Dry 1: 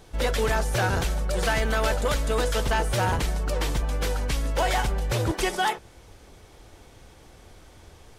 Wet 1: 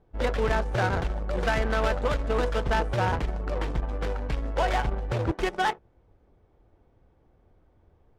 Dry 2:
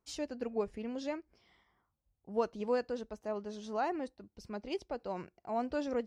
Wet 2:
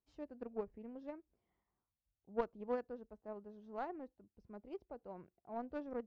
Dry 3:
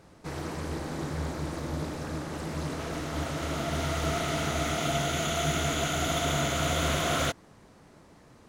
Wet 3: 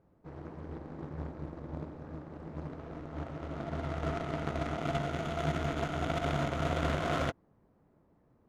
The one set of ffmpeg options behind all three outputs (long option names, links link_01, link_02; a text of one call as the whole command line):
ffmpeg -i in.wav -af "aemphasis=mode=production:type=cd,aeval=exprs='0.237*(cos(1*acos(clip(val(0)/0.237,-1,1)))-cos(1*PI/2))+0.0237*(cos(7*acos(clip(val(0)/0.237,-1,1)))-cos(7*PI/2))':channel_layout=same,adynamicsmooth=sensitivity=1:basefreq=1100" out.wav